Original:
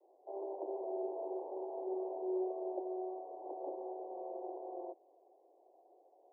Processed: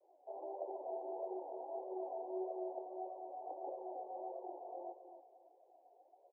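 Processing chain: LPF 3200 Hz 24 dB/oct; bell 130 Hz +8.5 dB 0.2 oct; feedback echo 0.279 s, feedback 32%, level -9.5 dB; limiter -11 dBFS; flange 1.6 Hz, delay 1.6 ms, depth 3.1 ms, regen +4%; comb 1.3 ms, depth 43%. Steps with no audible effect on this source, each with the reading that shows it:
LPF 3200 Hz: input band ends at 960 Hz; bell 130 Hz: input band starts at 290 Hz; limiter -11 dBFS: input peak -25.5 dBFS

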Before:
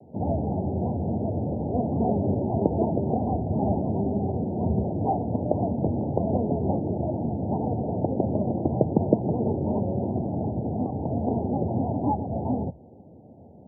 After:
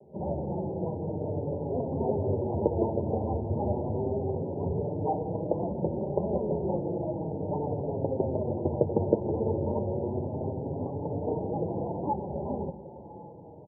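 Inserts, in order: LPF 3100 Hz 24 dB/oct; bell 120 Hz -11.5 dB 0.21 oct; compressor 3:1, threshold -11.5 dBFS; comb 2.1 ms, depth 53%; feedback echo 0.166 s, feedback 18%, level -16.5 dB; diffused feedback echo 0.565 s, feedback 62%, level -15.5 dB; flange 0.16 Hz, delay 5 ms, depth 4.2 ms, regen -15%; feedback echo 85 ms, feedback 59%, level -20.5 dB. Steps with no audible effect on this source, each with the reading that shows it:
LPF 3100 Hz: input band ends at 1000 Hz

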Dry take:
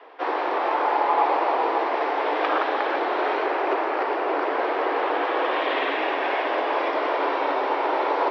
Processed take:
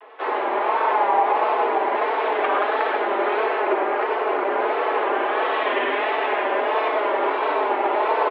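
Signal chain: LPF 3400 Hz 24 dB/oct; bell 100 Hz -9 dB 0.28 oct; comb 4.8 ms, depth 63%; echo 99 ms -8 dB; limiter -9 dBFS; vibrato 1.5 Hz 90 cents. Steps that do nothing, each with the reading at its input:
bell 100 Hz: input band starts at 230 Hz

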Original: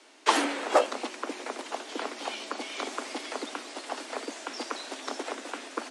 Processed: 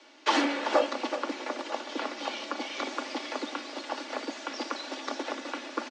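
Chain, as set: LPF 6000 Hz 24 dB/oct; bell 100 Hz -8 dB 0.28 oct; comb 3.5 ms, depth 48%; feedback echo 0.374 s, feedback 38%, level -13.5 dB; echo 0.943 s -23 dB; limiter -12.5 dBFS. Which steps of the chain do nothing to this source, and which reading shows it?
bell 100 Hz: input band starts at 190 Hz

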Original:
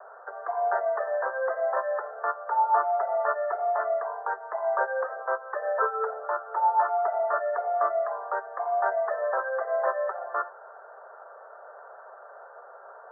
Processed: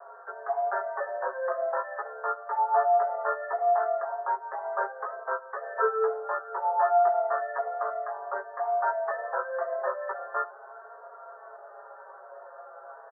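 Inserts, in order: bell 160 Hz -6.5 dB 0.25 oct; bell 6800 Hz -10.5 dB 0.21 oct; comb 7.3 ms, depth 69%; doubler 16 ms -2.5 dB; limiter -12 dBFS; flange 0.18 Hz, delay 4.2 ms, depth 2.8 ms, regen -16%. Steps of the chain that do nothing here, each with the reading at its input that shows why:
bell 160 Hz: input band starts at 380 Hz; bell 6800 Hz: input band ends at 1800 Hz

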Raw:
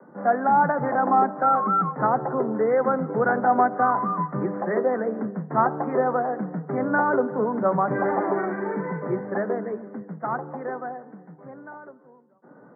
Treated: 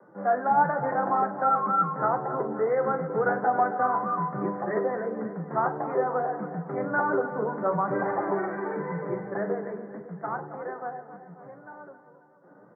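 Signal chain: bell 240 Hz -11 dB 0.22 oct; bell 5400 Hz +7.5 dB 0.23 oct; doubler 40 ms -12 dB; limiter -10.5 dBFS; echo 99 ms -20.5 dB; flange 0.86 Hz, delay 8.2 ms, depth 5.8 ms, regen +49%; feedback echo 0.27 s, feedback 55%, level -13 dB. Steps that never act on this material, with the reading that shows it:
bell 5400 Hz: input band ends at 2000 Hz

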